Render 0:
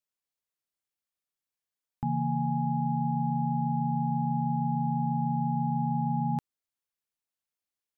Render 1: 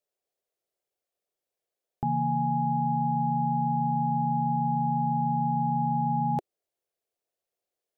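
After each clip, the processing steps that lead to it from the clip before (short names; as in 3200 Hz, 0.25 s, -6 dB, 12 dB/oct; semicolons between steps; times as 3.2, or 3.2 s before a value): band shelf 510 Hz +14 dB 1.3 oct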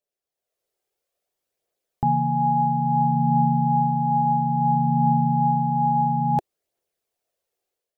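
AGC gain up to 9 dB; phaser 0.59 Hz, delay 2.6 ms, feedback 30%; gain -3.5 dB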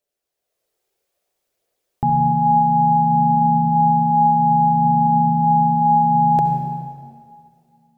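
limiter -15 dBFS, peak gain reduction 5.5 dB; reverb RT60 2.2 s, pre-delay 58 ms, DRR 3.5 dB; gain +5.5 dB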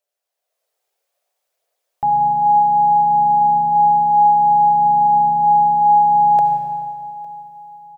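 resonant low shelf 430 Hz -13 dB, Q 1.5; feedback echo 0.856 s, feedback 44%, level -22.5 dB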